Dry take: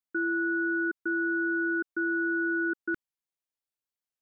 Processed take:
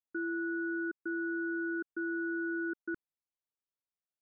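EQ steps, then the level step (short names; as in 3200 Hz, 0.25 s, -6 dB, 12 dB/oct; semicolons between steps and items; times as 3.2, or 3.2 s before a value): Bessel low-pass 1300 Hz, order 2; -5.0 dB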